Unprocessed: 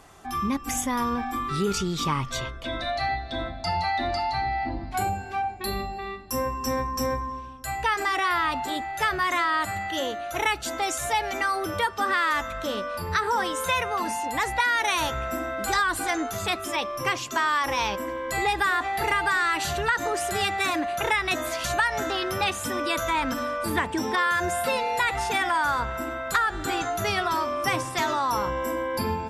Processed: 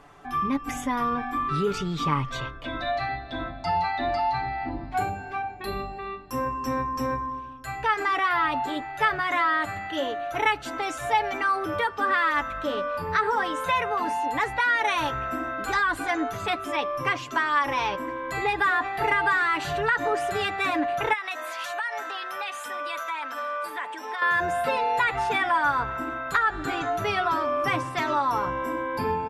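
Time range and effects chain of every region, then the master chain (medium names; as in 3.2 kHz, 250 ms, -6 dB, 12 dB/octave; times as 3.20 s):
21.13–24.22 s: compression, threshold -26 dBFS + high-pass 730 Hz + treble shelf 9.8 kHz +5.5 dB
whole clip: tone controls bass -2 dB, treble -13 dB; comb 6.9 ms, depth 49%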